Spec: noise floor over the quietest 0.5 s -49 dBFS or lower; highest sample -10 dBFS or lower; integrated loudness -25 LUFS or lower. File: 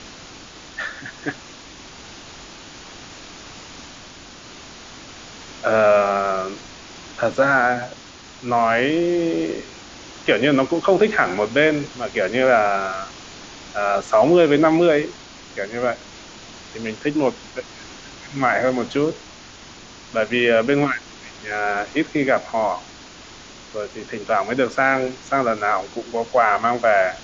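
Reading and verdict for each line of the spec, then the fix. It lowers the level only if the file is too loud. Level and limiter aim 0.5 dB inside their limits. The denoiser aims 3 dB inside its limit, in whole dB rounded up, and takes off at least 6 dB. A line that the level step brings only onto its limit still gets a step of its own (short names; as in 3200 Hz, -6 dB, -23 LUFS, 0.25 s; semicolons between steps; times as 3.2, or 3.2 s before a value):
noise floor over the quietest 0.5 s -42 dBFS: fail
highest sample -3.0 dBFS: fail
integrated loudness -20.0 LUFS: fail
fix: denoiser 6 dB, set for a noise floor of -42 dBFS; gain -5.5 dB; limiter -10.5 dBFS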